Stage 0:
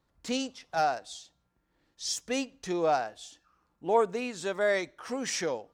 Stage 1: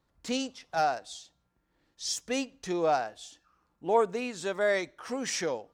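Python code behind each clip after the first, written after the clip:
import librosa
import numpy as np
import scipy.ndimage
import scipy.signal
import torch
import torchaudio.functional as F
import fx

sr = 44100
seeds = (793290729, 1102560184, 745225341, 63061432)

y = x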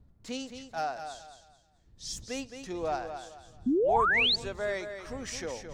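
y = fx.dmg_wind(x, sr, seeds[0], corner_hz=100.0, level_db=-45.0)
y = fx.echo_feedback(y, sr, ms=217, feedback_pct=30, wet_db=-8.5)
y = fx.spec_paint(y, sr, seeds[1], shape='rise', start_s=3.66, length_s=0.7, low_hz=230.0, high_hz=4700.0, level_db=-19.0)
y = y * librosa.db_to_amplitude(-6.0)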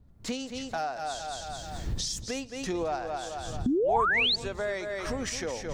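y = fx.recorder_agc(x, sr, target_db=-24.0, rise_db_per_s=37.0, max_gain_db=30)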